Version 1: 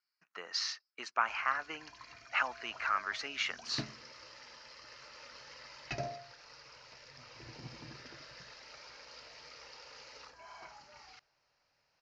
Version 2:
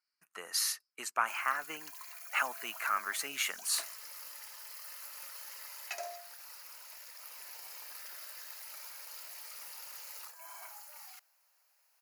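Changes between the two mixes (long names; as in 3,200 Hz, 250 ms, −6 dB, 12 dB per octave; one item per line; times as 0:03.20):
background: add high-pass filter 650 Hz 24 dB per octave
master: remove Butterworth low-pass 5,700 Hz 48 dB per octave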